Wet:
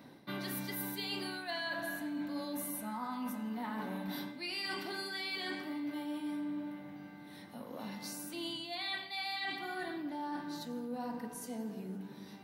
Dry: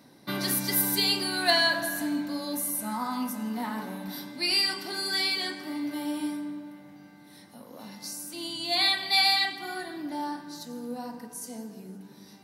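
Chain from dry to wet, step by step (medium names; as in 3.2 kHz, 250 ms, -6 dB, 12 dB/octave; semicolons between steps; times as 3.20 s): high-order bell 7.5 kHz -9 dB; reverse; compression 12:1, threshold -37 dBFS, peak gain reduction 18.5 dB; reverse; trim +1 dB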